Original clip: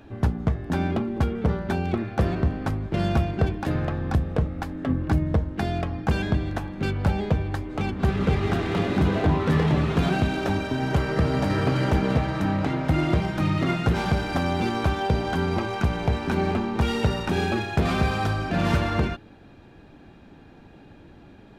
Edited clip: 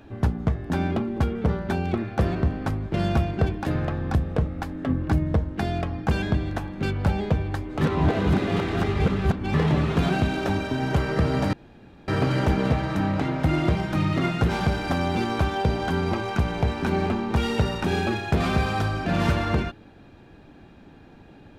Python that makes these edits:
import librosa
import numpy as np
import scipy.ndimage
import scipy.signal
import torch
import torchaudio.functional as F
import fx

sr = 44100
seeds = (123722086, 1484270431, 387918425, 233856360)

y = fx.edit(x, sr, fx.reverse_span(start_s=7.81, length_s=1.73),
    fx.insert_room_tone(at_s=11.53, length_s=0.55), tone=tone)